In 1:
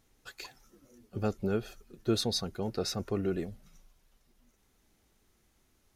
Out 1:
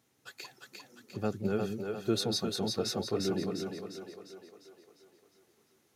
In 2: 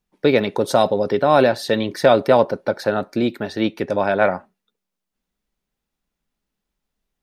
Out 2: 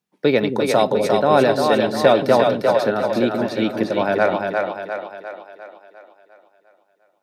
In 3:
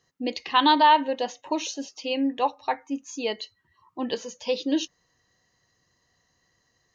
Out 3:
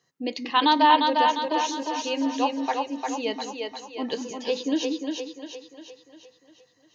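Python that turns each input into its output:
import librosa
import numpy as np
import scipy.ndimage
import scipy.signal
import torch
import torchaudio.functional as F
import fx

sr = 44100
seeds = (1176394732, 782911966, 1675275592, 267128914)

p1 = scipy.signal.sosfilt(scipy.signal.butter(4, 110.0, 'highpass', fs=sr, output='sos'), x)
p2 = p1 + fx.echo_split(p1, sr, split_hz=350.0, low_ms=179, high_ms=351, feedback_pct=52, wet_db=-3.5, dry=0)
y = p2 * librosa.db_to_amplitude(-1.0)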